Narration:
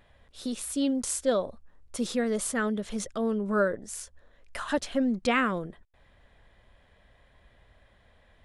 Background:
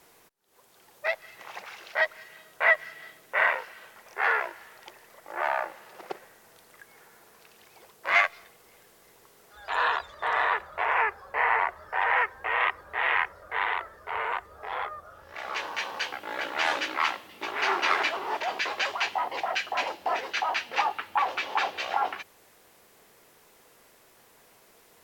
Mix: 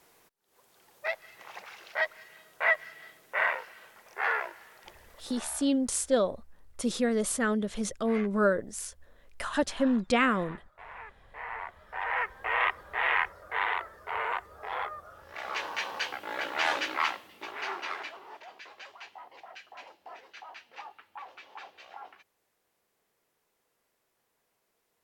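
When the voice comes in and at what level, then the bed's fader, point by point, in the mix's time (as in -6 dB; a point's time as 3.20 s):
4.85 s, +0.5 dB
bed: 5.19 s -4 dB
5.51 s -21 dB
11.05 s -21 dB
12.52 s -1.5 dB
16.97 s -1.5 dB
18.53 s -19 dB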